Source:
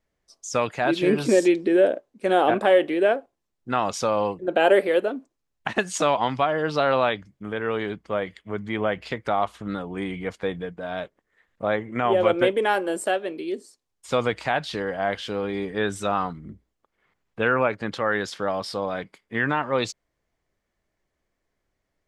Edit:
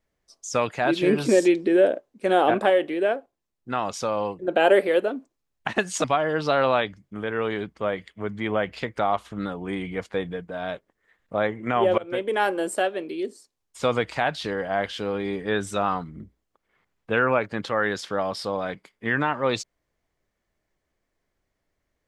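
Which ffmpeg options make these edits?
ffmpeg -i in.wav -filter_complex "[0:a]asplit=5[link_01][link_02][link_03][link_04][link_05];[link_01]atrim=end=2.702[link_06];[link_02]atrim=start=2.698:end=4.392,asetpts=PTS-STARTPTS,volume=-3dB[link_07];[link_03]atrim=start=4.388:end=6.042[link_08];[link_04]atrim=start=6.328:end=12.27,asetpts=PTS-STARTPTS,afade=type=out:start_time=5.938:duration=0.004:curve=hsin:silence=0.0707946[link_09];[link_05]atrim=start=12.27,asetpts=PTS-STARTPTS,afade=type=in:duration=0.47:silence=0.0707946[link_10];[link_06][link_07]acrossfade=duration=0.004:curve1=hsin:curve2=hsin[link_11];[link_11][link_08]acrossfade=duration=0.004:curve1=hsin:curve2=hsin[link_12];[link_09][link_10]concat=n=2:v=0:a=1[link_13];[link_12][link_13]acrossfade=duration=0.004:curve1=hsin:curve2=hsin" out.wav

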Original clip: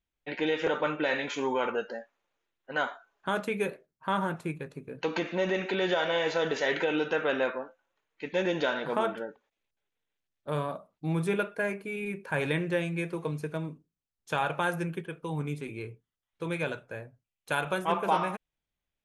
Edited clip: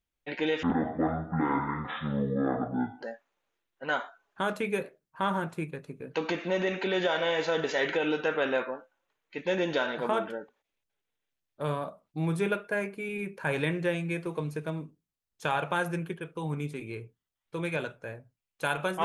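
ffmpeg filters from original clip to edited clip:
ffmpeg -i in.wav -filter_complex "[0:a]asplit=3[link_01][link_02][link_03];[link_01]atrim=end=0.634[link_04];[link_02]atrim=start=0.63:end=1.9,asetpts=PTS-STARTPTS,asetrate=23373,aresample=44100[link_05];[link_03]atrim=start=1.896[link_06];[link_04][link_05]acrossfade=duration=0.004:curve1=hsin:curve2=hsin[link_07];[link_07][link_06]acrossfade=duration=0.004:curve1=hsin:curve2=hsin" out.wav

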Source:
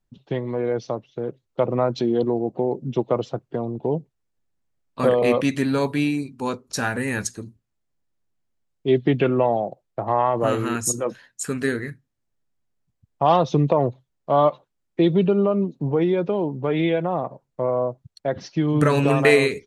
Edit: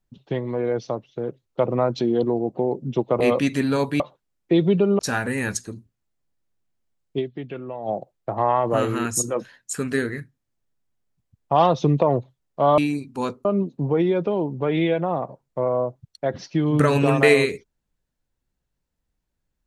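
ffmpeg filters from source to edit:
ffmpeg -i in.wav -filter_complex "[0:a]asplit=8[link_01][link_02][link_03][link_04][link_05][link_06][link_07][link_08];[link_01]atrim=end=3.202[link_09];[link_02]atrim=start=5.218:end=6.022[link_10];[link_03]atrim=start=14.478:end=15.472[link_11];[link_04]atrim=start=6.688:end=9.13,asetpts=PTS-STARTPTS,afade=type=out:start_time=2.192:duration=0.25:curve=exp:silence=0.199526[link_12];[link_05]atrim=start=9.13:end=9.34,asetpts=PTS-STARTPTS,volume=-14dB[link_13];[link_06]atrim=start=9.34:end=14.482,asetpts=PTS-STARTPTS,afade=type=in:duration=0.25:curve=exp:silence=0.199526[link_14];[link_07]atrim=start=6.018:end=6.692[link_15];[link_08]atrim=start=15.468[link_16];[link_09][link_10]acrossfade=duration=0.004:curve1=hsin:curve2=hsin[link_17];[link_17][link_11]acrossfade=duration=0.004:curve1=hsin:curve2=hsin[link_18];[link_12][link_13][link_14]concat=n=3:v=0:a=1[link_19];[link_18][link_19]acrossfade=duration=0.004:curve1=hsin:curve2=hsin[link_20];[link_20][link_15]acrossfade=duration=0.004:curve1=hsin:curve2=hsin[link_21];[link_21][link_16]acrossfade=duration=0.004:curve1=hsin:curve2=hsin" out.wav

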